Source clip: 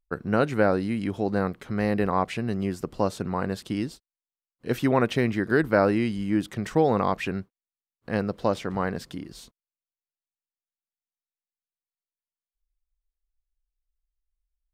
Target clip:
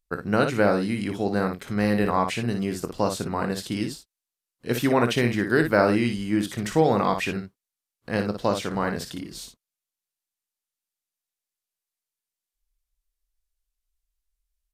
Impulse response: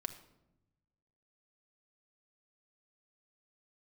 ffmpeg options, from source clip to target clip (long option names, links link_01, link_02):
-filter_complex "[0:a]highshelf=frequency=3000:gain=8.5,asplit=2[link_01][link_02];[link_02]aecho=0:1:25|58:0.251|0.447[link_03];[link_01][link_03]amix=inputs=2:normalize=0,aresample=32000,aresample=44100"